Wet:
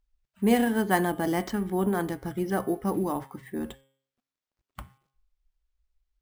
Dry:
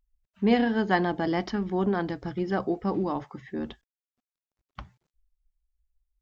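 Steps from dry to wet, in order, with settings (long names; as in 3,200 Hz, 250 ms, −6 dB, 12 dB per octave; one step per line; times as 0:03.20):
hum removal 134.8 Hz, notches 27
decimation without filtering 4×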